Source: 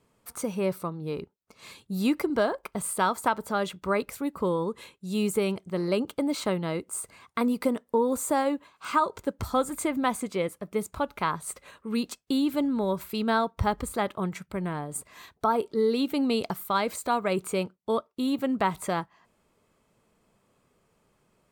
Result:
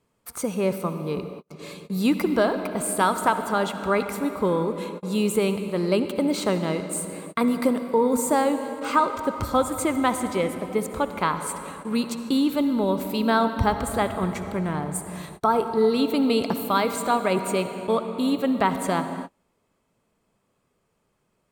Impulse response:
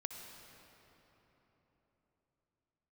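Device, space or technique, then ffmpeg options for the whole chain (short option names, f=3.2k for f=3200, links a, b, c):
keyed gated reverb: -filter_complex "[0:a]asplit=3[a][b][c];[1:a]atrim=start_sample=2205[d];[b][d]afir=irnorm=-1:irlink=0[e];[c]apad=whole_len=948613[f];[e][f]sidechaingate=range=-40dB:threshold=-57dB:ratio=16:detection=peak,volume=5.5dB[g];[a][g]amix=inputs=2:normalize=0,volume=-3.5dB"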